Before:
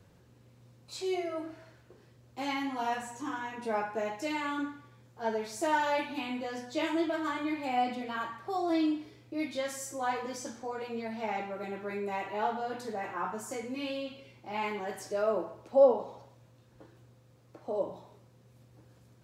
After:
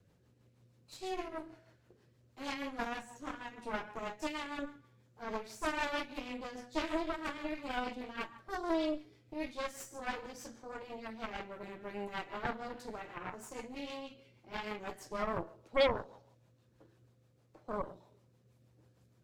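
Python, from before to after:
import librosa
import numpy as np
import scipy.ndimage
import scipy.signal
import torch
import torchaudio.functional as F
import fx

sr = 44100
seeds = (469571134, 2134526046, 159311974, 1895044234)

y = fx.rotary(x, sr, hz=6.3)
y = fx.cheby_harmonics(y, sr, harmonics=(8,), levels_db=(-10,), full_scale_db=-13.5)
y = y * librosa.db_to_amplitude(-6.5)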